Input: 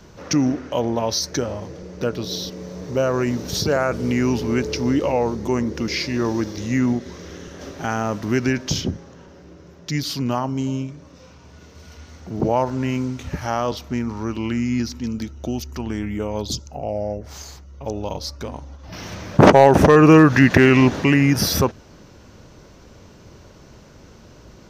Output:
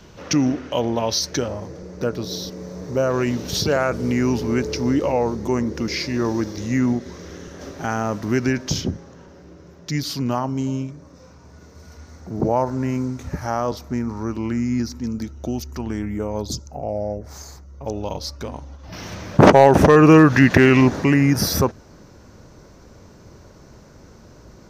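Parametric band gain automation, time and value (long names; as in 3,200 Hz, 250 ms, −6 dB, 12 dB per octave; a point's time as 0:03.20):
parametric band 3,000 Hz 0.75 octaves
+4.5 dB
from 0:01.48 −6.5 dB
from 0:03.10 +4 dB
from 0:03.90 −4 dB
from 0:10.91 −12 dB
from 0:15.24 −6 dB
from 0:16.02 −12 dB
from 0:17.87 −1 dB
from 0:20.81 −7.5 dB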